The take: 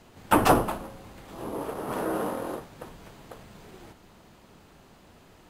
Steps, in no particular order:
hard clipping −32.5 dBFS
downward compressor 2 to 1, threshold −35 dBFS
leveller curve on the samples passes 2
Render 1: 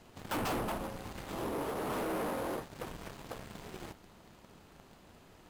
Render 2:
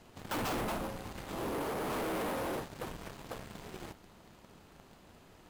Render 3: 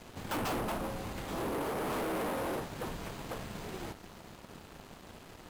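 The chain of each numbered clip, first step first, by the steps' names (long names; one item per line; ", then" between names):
leveller curve on the samples, then downward compressor, then hard clipping
leveller curve on the samples, then hard clipping, then downward compressor
downward compressor, then leveller curve on the samples, then hard clipping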